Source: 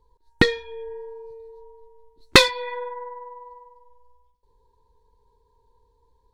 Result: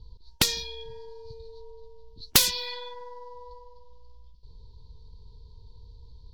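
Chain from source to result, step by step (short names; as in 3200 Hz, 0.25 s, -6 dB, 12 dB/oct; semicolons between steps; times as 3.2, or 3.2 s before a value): low-pass opened by the level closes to 2600 Hz, open at -19.5 dBFS; EQ curve 110 Hz 0 dB, 190 Hz -5 dB, 320 Hz -17 dB, 850 Hz -26 dB, 2000 Hz -28 dB, 3100 Hz -5 dB, 4600 Hz +10 dB, 8700 Hz -8 dB, 15000 Hz +12 dB; spectral compressor 4:1; gain -3.5 dB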